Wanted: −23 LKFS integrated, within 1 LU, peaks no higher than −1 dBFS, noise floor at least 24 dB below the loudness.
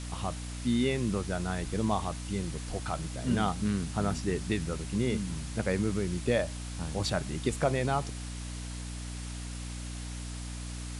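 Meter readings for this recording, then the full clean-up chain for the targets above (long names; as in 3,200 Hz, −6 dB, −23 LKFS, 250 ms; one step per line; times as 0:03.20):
mains hum 60 Hz; hum harmonics up to 300 Hz; level of the hum −36 dBFS; background noise floor −39 dBFS; target noise floor −57 dBFS; integrated loudness −32.5 LKFS; sample peak −14.5 dBFS; target loudness −23.0 LKFS
→ mains-hum notches 60/120/180/240/300 Hz
noise reduction from a noise print 18 dB
level +9.5 dB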